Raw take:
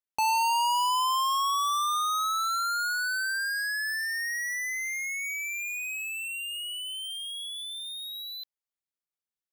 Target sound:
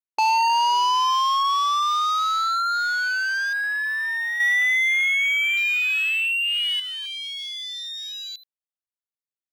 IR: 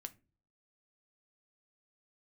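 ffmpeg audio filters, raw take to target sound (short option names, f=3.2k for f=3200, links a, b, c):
-filter_complex "[0:a]afwtdn=0.0126,asettb=1/sr,asplit=3[a][b][c];[a]atrim=end=4.404[d];[b]atrim=start=4.4:end=6.8,asetpts=PTS-STARTPTS,afade=t=in:d=0.004:c=qsin,afade=t=out:st=2.396:d=0.004:c=qsin,acontrast=84[e];[c]atrim=start=6.796[f];[d][e]acrossfade=d=0.004:c1=hsin:c2=qsin[g];[g][f]acrossfade=d=0.004:c1=qsin:c2=hsin,volume=6dB"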